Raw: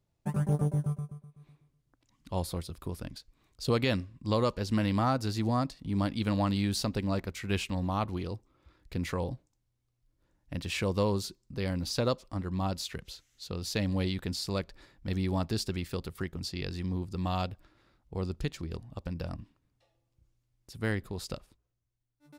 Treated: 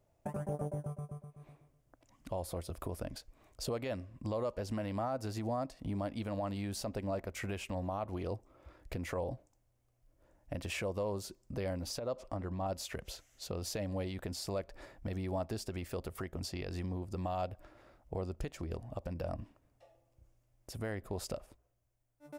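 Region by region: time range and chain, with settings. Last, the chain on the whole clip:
0:11.99–0:12.66: high-shelf EQ 8,600 Hz −10 dB + downward compressor 2.5 to 1, threshold −38 dBFS
whole clip: downward compressor, threshold −38 dBFS; graphic EQ with 15 bands 160 Hz −5 dB, 630 Hz +11 dB, 4,000 Hz −8 dB; brickwall limiter −31.5 dBFS; level +4 dB

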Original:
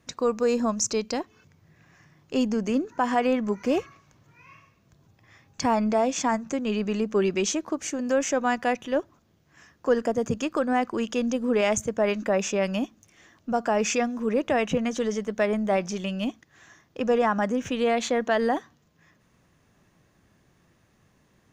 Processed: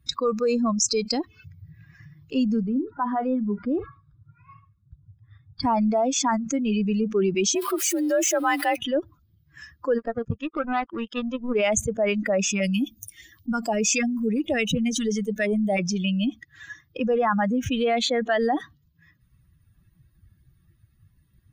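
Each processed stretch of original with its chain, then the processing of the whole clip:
0:02.60–0:05.63: Chebyshev low-pass with heavy ripple 5,100 Hz, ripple 9 dB + tilt shelving filter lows +6.5 dB, about 720 Hz + double-tracking delay 39 ms −13 dB
0:07.55–0:08.76: converter with a step at zero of −31.5 dBFS + high-pass filter 280 Hz 6 dB per octave + frequency shifter +54 Hz
0:09.98–0:11.55: power curve on the samples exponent 2 + high-frequency loss of the air 120 metres
0:12.50–0:15.79: high-shelf EQ 7,600 Hz +9 dB + notch on a step sequencer 9.8 Hz 520–1,800 Hz
whole clip: spectral dynamics exaggerated over time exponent 2; envelope flattener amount 70%

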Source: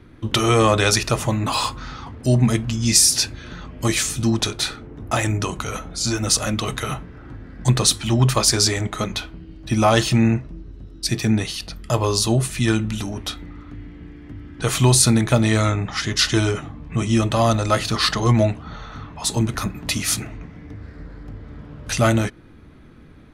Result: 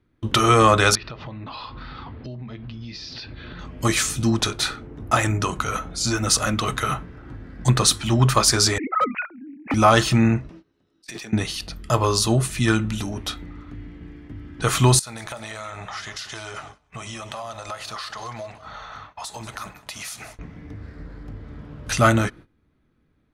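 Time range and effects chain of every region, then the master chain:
0:00.95–0:03.59: Butterworth low-pass 4,600 Hz 48 dB per octave + downward compressor 12 to 1, threshold −31 dBFS
0:08.78–0:09.74: three sine waves on the formant tracks + Butterworth low-pass 2,500 Hz 96 dB per octave + hard clipping −18 dBFS
0:10.49–0:11.33: meter weighting curve A + compressor whose output falls as the input rises −35 dBFS + tube saturation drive 20 dB, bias 0.4
0:14.99–0:20.39: low shelf with overshoot 460 Hz −12 dB, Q 1.5 + downward compressor 16 to 1, threshold −29 dBFS + repeating echo 189 ms, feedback 45%, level −14 dB
whole clip: noise gate −40 dBFS, range −19 dB; dynamic equaliser 1,300 Hz, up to +7 dB, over −38 dBFS, Q 1.9; level −1 dB

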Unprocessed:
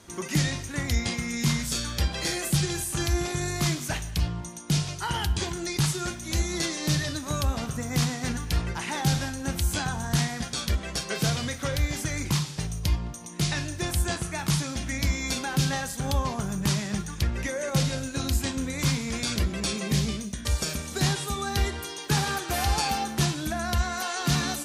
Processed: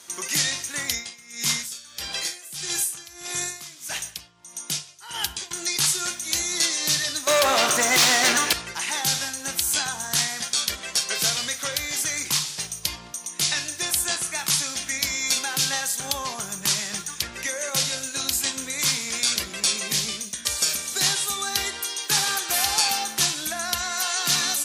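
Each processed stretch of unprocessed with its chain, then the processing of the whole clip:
0:00.89–0:05.51: notch filter 4,300 Hz, Q 29 + tremolo with a sine in dB 1.6 Hz, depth 19 dB
0:07.27–0:08.53: hollow resonant body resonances 350/580 Hz, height 12 dB + mid-hump overdrive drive 27 dB, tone 2,600 Hz, clips at −11 dBFS
whole clip: high-pass filter 780 Hz 6 dB per octave; high-shelf EQ 2,900 Hz +10 dB; level +1.5 dB

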